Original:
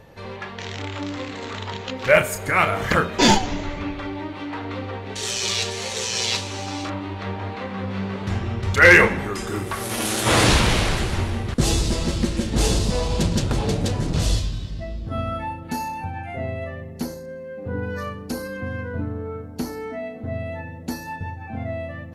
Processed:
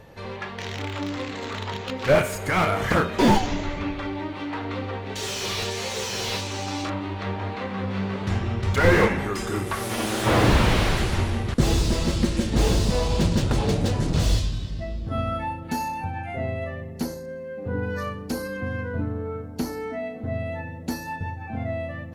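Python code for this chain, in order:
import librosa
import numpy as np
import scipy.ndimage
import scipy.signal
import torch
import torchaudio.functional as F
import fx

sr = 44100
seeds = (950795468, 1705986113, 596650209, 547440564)

y = fx.slew_limit(x, sr, full_power_hz=150.0)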